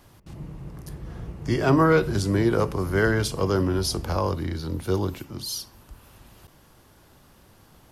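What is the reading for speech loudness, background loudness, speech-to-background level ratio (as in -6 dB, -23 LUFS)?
-24.5 LUFS, -37.0 LUFS, 12.5 dB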